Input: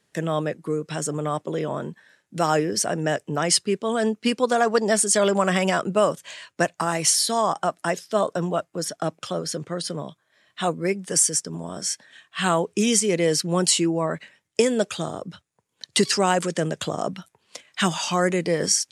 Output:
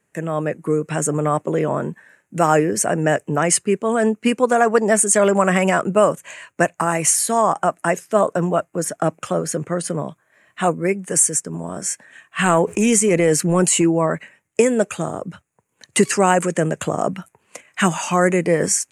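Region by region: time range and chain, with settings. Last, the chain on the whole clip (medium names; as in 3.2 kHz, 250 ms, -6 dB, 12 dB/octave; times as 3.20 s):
12.39–13.84 s: transient shaper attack -9 dB, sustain -2 dB + level flattener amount 50%
whole clip: high-order bell 4.2 kHz -14 dB 1 oct; level rider gain up to 7 dB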